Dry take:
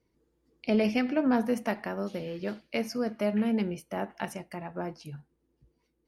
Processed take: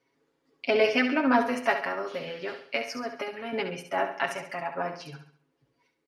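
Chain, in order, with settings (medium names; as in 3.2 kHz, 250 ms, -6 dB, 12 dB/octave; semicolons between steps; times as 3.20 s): 1.74–3.53 s: compression, threshold -31 dBFS, peak gain reduction 8 dB; band-pass filter 1.7 kHz, Q 0.54; comb 7.3 ms, depth 90%; on a send: feedback delay 68 ms, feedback 41%, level -8.5 dB; on the sum: trim +7 dB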